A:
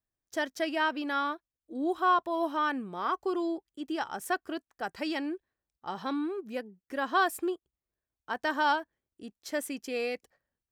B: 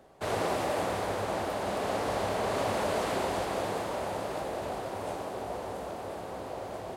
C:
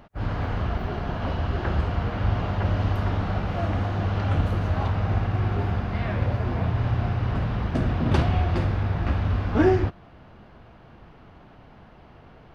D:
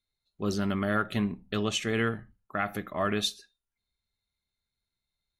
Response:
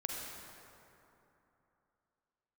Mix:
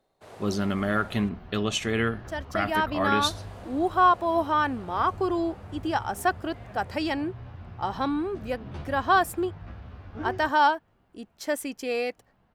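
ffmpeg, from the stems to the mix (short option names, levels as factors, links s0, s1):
-filter_complex "[0:a]equalizer=f=820:w=1.5:g=4.5,dynaudnorm=f=540:g=3:m=3.16,adelay=1950,volume=0.501[s0];[1:a]volume=0.158,asplit=3[s1][s2][s3];[s1]atrim=end=1.29,asetpts=PTS-STARTPTS,afade=t=out:st=1.286:d=0.004:c=hsin[s4];[s2]atrim=start=1.29:end=3.29,asetpts=PTS-STARTPTS,volume=0[s5];[s3]atrim=start=3.29,asetpts=PTS-STARTPTS,afade=t=in:d=0.004:c=hsin[s6];[s4][s5][s6]concat=n=3:v=0:a=1[s7];[2:a]asplit=2[s8][s9];[s9]adelay=11.9,afreqshift=1.6[s10];[s8][s10]amix=inputs=2:normalize=1,adelay=600,volume=0.188[s11];[3:a]volume=1.26[s12];[s0][s7][s11][s12]amix=inputs=4:normalize=0"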